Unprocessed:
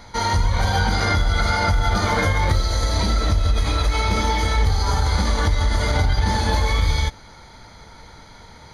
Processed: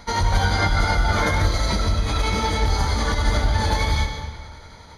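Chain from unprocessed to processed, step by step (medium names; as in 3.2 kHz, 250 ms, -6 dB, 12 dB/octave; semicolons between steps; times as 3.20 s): granular stretch 0.57×, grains 182 ms; algorithmic reverb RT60 1.6 s, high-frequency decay 0.8×, pre-delay 80 ms, DRR 6 dB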